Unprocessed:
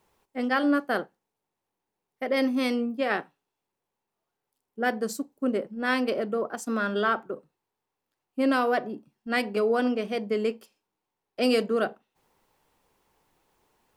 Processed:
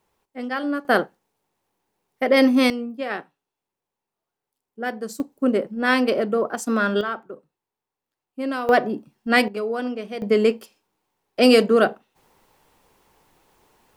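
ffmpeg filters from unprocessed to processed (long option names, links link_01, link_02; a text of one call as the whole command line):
ffmpeg -i in.wav -af "asetnsamples=nb_out_samples=441:pad=0,asendcmd='0.85 volume volume 9dB;2.7 volume volume -1.5dB;5.2 volume volume 6.5dB;7.01 volume volume -3dB;8.69 volume volume 9dB;9.48 volume volume -2dB;10.22 volume volume 9dB',volume=-2dB" out.wav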